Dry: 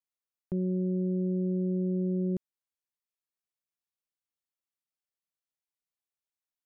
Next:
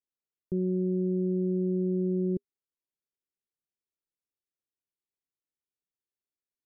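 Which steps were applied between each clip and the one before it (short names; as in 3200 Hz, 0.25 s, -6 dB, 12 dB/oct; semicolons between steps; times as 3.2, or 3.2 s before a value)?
EQ curve 240 Hz 0 dB, 400 Hz +5 dB, 740 Hz -13 dB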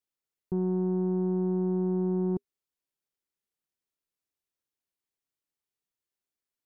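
soft clip -24 dBFS, distortion -20 dB; gain +2.5 dB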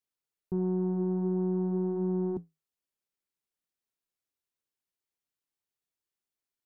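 flange 0.47 Hz, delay 7.1 ms, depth 5.8 ms, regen -73%; gain +2.5 dB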